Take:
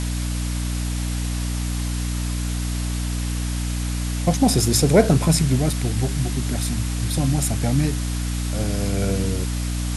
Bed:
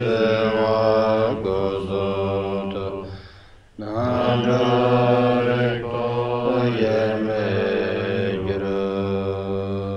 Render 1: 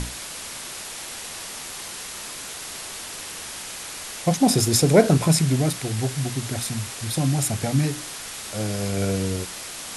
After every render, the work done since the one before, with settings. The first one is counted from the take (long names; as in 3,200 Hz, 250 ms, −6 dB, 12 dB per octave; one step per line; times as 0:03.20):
mains-hum notches 60/120/180/240/300 Hz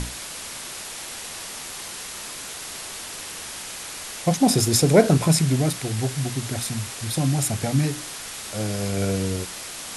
no processing that can be heard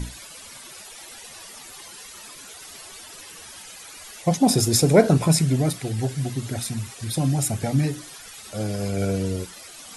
broadband denoise 13 dB, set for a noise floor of −36 dBFS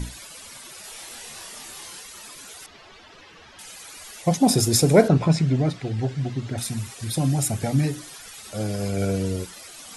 0:00.81–0:02.00: double-tracking delay 27 ms −2 dB
0:02.66–0:03.59: high-frequency loss of the air 220 metres
0:05.08–0:06.58: high-frequency loss of the air 140 metres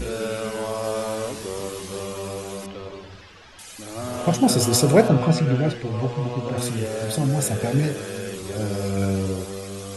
mix in bed −9 dB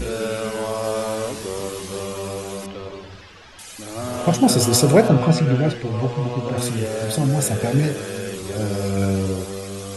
level +2.5 dB
brickwall limiter −3 dBFS, peak gain reduction 2.5 dB